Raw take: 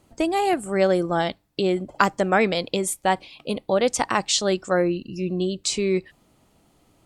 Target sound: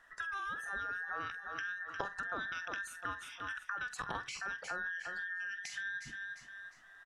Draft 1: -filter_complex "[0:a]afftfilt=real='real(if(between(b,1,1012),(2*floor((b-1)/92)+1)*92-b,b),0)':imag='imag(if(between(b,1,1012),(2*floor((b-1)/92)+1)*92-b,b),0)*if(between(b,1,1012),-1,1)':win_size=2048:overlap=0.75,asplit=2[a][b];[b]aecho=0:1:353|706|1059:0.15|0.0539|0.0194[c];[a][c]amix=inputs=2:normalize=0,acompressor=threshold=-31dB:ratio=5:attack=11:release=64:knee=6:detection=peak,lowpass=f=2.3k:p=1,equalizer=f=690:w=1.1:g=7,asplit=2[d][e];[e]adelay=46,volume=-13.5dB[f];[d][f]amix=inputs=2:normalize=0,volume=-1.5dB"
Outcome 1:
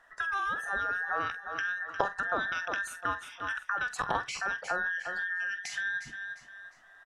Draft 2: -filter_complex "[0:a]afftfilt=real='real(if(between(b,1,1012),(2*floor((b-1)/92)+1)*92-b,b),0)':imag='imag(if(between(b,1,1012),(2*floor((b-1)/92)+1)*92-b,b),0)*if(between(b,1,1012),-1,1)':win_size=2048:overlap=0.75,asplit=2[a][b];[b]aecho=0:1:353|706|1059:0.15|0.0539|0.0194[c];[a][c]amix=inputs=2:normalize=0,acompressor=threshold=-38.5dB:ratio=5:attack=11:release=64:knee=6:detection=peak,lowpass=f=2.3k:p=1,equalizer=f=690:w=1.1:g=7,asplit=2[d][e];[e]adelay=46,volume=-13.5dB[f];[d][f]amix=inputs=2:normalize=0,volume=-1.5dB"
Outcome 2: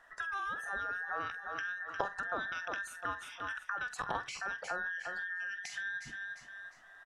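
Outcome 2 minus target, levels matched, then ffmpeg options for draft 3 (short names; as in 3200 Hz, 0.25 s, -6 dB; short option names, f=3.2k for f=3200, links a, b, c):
500 Hz band +3.5 dB
-filter_complex "[0:a]afftfilt=real='real(if(between(b,1,1012),(2*floor((b-1)/92)+1)*92-b,b),0)':imag='imag(if(between(b,1,1012),(2*floor((b-1)/92)+1)*92-b,b),0)*if(between(b,1,1012),-1,1)':win_size=2048:overlap=0.75,asplit=2[a][b];[b]aecho=0:1:353|706|1059:0.15|0.0539|0.0194[c];[a][c]amix=inputs=2:normalize=0,acompressor=threshold=-38.5dB:ratio=5:attack=11:release=64:knee=6:detection=peak,lowpass=f=2.3k:p=1,asplit=2[d][e];[e]adelay=46,volume=-13.5dB[f];[d][f]amix=inputs=2:normalize=0,volume=-1.5dB"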